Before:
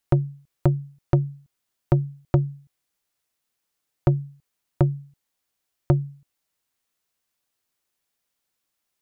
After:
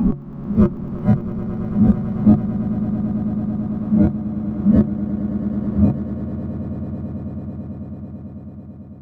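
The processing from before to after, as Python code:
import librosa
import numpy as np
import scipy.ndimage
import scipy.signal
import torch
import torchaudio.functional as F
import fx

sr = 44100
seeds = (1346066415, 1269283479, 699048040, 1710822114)

p1 = fx.spec_swells(x, sr, rise_s=1.88)
p2 = fx.noise_reduce_blind(p1, sr, reduce_db=21)
p3 = fx.small_body(p2, sr, hz=(210.0, 1100.0), ring_ms=60, db=16)
p4 = p3 + fx.echo_swell(p3, sr, ms=110, loudest=8, wet_db=-14.0, dry=0)
y = p4 * librosa.db_to_amplitude(4.0)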